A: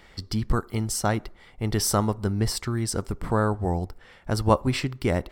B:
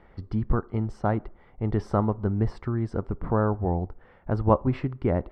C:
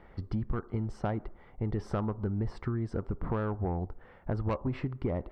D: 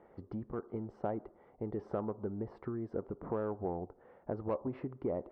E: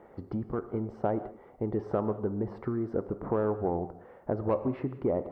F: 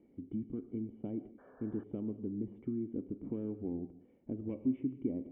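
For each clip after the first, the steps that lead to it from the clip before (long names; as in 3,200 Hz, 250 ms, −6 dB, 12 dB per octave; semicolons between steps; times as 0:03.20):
low-pass filter 1,200 Hz 12 dB per octave
soft clipping −16.5 dBFS, distortion −14 dB; downward compressor, threshold −28 dBFS, peak gain reduction 8.5 dB
resonant band-pass 490 Hz, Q 1
reverb whose tail is shaped and stops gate 220 ms flat, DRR 11.5 dB; level +7 dB
sound drawn into the spectrogram noise, 0:01.38–0:01.84, 400–1,800 Hz −35 dBFS; formant resonators in series i; level +1.5 dB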